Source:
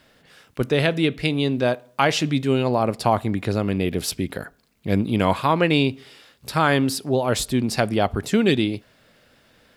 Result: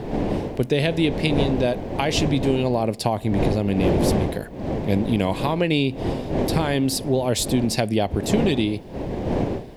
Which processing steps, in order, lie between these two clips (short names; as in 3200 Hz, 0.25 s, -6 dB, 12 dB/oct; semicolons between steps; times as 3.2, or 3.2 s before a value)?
wind noise 500 Hz -25 dBFS; compressor, threshold -18 dBFS, peak gain reduction 8 dB; bell 1300 Hz -13 dB 0.67 oct; gain +3 dB